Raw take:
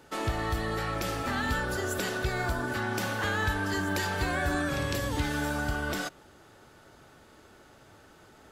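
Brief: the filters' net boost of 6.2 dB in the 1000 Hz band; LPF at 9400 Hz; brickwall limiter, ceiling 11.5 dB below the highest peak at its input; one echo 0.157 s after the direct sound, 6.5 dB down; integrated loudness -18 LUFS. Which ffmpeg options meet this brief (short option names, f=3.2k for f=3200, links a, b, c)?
-af "lowpass=9.4k,equalizer=f=1k:t=o:g=8,alimiter=level_in=3dB:limit=-24dB:level=0:latency=1,volume=-3dB,aecho=1:1:157:0.473,volume=16.5dB"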